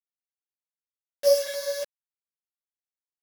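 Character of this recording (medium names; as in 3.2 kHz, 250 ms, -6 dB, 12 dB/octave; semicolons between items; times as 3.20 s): a buzz of ramps at a fixed pitch in blocks of 8 samples; chopped level 1.3 Hz, depth 60%, duty 90%; a quantiser's noise floor 6-bit, dither none; a shimmering, thickened sound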